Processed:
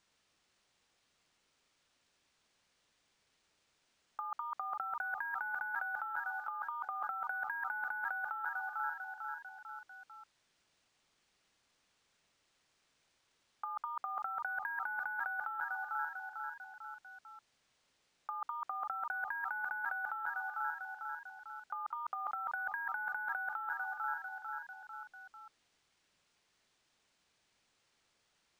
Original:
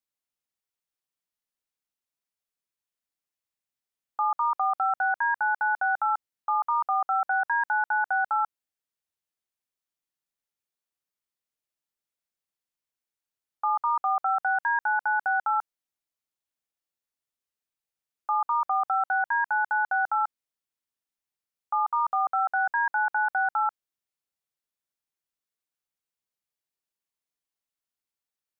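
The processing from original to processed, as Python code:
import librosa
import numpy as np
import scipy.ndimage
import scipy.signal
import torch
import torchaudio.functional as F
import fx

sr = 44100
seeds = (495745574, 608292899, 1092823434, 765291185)

y = fx.low_shelf(x, sr, hz=490.0, db=-9.5)
y = fx.echo_feedback(y, sr, ms=447, feedback_pct=57, wet_db=-22.0)
y = fx.over_compress(y, sr, threshold_db=-34.0, ratio=-0.5)
y = fx.peak_eq(y, sr, hz=740.0, db=-10.0, octaves=1.5)
y = np.interp(np.arange(len(y)), np.arange(len(y))[::3], y[::3])
y = y * 10.0 ** (5.5 / 20.0)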